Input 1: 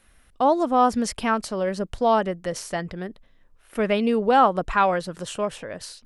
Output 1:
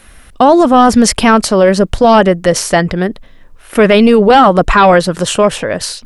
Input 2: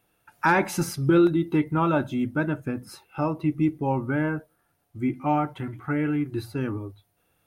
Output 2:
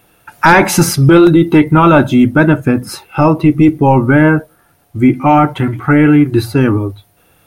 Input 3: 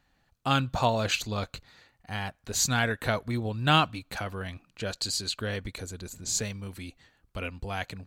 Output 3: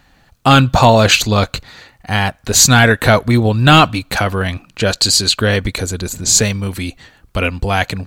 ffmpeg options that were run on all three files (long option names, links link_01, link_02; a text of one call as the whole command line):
ffmpeg -i in.wav -af "apsyclip=19.5dB,volume=-1.5dB" out.wav